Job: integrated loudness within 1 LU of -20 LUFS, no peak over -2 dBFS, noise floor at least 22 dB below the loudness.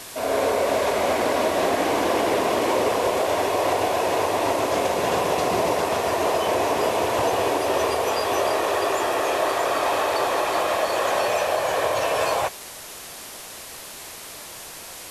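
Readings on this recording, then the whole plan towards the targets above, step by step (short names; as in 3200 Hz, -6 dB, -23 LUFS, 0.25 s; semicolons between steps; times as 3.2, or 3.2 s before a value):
noise floor -39 dBFS; noise floor target -44 dBFS; loudness -22.0 LUFS; peak -9.5 dBFS; loudness target -20.0 LUFS
-> noise print and reduce 6 dB; gain +2 dB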